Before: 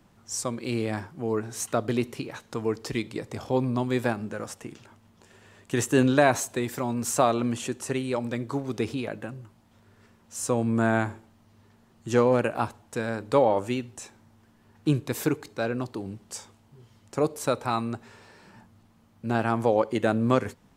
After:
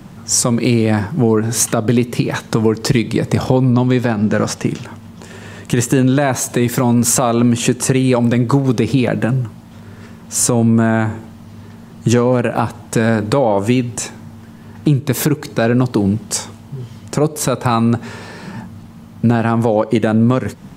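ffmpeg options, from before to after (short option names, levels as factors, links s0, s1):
-filter_complex "[0:a]asettb=1/sr,asplit=3[s0][s1][s2];[s0]atrim=end=3.724[s3];[s1]atrim=start=3.72:end=4.65,asetpts=PTS-STARTPTS,afade=t=in:d=0.004:c=qsin,afade=t=out:st=0.926:d=0.004:c=qsin,highshelf=f=7400:t=q:w=1.5:g=-6[s4];[s2]atrim=start=4.646[s5];[s3][s4]acrossfade=d=0.004:c1=hsin:c2=qsin[s6];[s6][s5]acrossfade=d=0.004:c1=qsin:c2=hsin,equalizer=f=160:t=o:w=1.2:g=8.5,acompressor=threshold=0.0447:ratio=10,alimiter=level_in=9.44:limit=0.891:release=50:level=0:latency=1,volume=0.891"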